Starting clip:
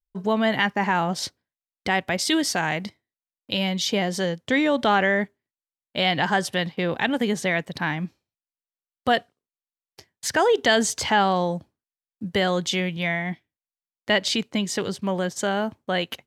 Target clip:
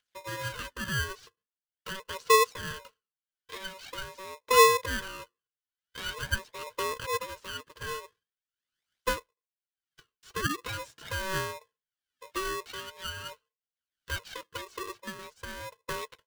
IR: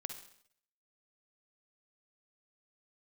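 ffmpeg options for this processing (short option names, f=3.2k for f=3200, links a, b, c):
-filter_complex "[0:a]acrossover=split=280|2000[a][b][c];[c]acompressor=mode=upward:threshold=-29dB:ratio=2.5[d];[a][b][d]amix=inputs=3:normalize=0,aphaser=in_gain=1:out_gain=1:delay=2.8:decay=0.68:speed=0.44:type=triangular,asplit=3[e][f][g];[e]bandpass=f=300:t=q:w=8,volume=0dB[h];[f]bandpass=f=870:t=q:w=8,volume=-6dB[i];[g]bandpass=f=2.24k:t=q:w=8,volume=-9dB[j];[h][i][j]amix=inputs=3:normalize=0,aeval=exprs='val(0)*sgn(sin(2*PI*760*n/s))':c=same,volume=-1dB"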